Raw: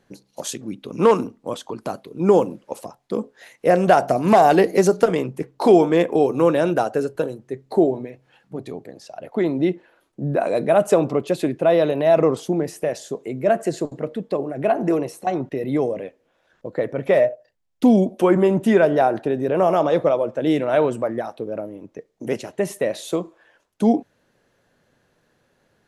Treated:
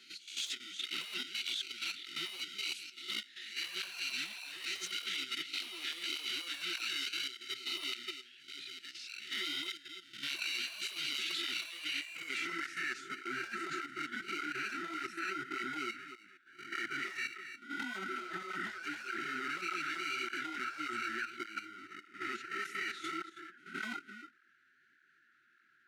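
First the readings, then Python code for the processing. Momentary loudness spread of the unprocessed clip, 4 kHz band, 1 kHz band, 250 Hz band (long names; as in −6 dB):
16 LU, +3.0 dB, −20.0 dB, −28.0 dB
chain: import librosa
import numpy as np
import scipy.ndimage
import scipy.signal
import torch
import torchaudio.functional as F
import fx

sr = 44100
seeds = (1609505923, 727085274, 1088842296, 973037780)

p1 = fx.spec_swells(x, sr, rise_s=0.46)
p2 = fx.sample_hold(p1, sr, seeds[0], rate_hz=1700.0, jitter_pct=0)
p3 = p1 + (p2 * 10.0 ** (-3.0 / 20.0))
p4 = fx.filter_sweep_bandpass(p3, sr, from_hz=3400.0, to_hz=1300.0, start_s=11.68, end_s=12.95, q=2.3)
p5 = fx.brickwall_bandstop(p4, sr, low_hz=390.0, high_hz=1300.0)
p6 = p5 + fx.echo_single(p5, sr, ms=293, db=-15.5, dry=0)
p7 = fx.level_steps(p6, sr, step_db=11)
p8 = 10.0 ** (-34.0 / 20.0) * np.tanh(p7 / 10.0 ** (-34.0 / 20.0))
p9 = fx.low_shelf(p8, sr, hz=380.0, db=-11.0)
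p10 = fx.over_compress(p9, sr, threshold_db=-44.0, ratio=-0.5)
p11 = fx.flanger_cancel(p10, sr, hz=1.7, depth_ms=7.1)
y = p11 * 10.0 ** (9.0 / 20.0)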